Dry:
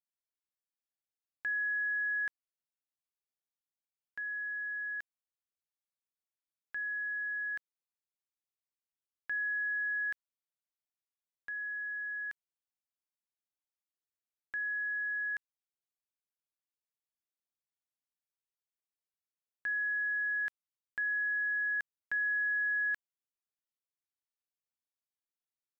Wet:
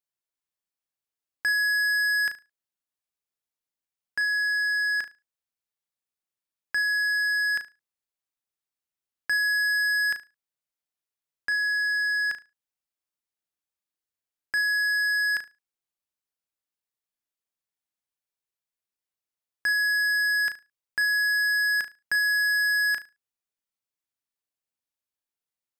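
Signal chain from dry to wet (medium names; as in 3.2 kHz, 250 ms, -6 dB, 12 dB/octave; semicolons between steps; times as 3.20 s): waveshaping leveller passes 3; on a send: flutter echo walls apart 6.2 m, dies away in 0.25 s; on the sum: trim +7.5 dB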